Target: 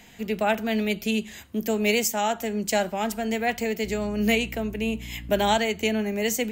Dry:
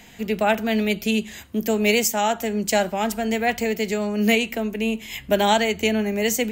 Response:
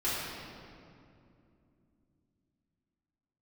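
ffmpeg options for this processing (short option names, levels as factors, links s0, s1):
-filter_complex "[0:a]asettb=1/sr,asplit=3[s0][s1][s2];[s0]atrim=end=3.844[s3];[s1]atrim=start=3.84:end=5.58,asetpts=PTS-STARTPTS,afade=t=in:d=0.004:c=qsin,afade=t=out:st=1.736:d=0.004:c=qsin,aeval=exprs='val(0)+0.02*(sin(2*PI*60*n/s)+sin(2*PI*2*60*n/s)/2+sin(2*PI*3*60*n/s)/3+sin(2*PI*4*60*n/s)/4+sin(2*PI*5*60*n/s)/5)':c=same[s4];[s2]atrim=start=5.576[s5];[s3][s4]acrossfade=d=0.004:c1=hsin:c2=qsin[s6];[s6][s5]acrossfade=d=0.004:c1=qsin:c2=hsin,volume=0.668"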